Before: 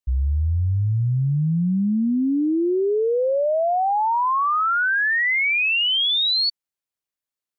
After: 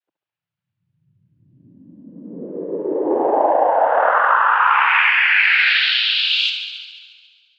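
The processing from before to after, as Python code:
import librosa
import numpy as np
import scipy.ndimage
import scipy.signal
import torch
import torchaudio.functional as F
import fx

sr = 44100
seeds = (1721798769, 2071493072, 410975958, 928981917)

y = scipy.signal.sosfilt(scipy.signal.butter(4, 470.0, 'highpass', fs=sr, output='sos'), x)
y = fx.echo_thinned(y, sr, ms=70, feedback_pct=76, hz=760.0, wet_db=-7.5)
y = fx.noise_vocoder(y, sr, seeds[0], bands=8)
y = scipy.signal.sosfilt(scipy.signal.butter(4, 3400.0, 'lowpass', fs=sr, output='sos'), y)
y = F.gain(torch.from_numpy(y), 5.0).numpy()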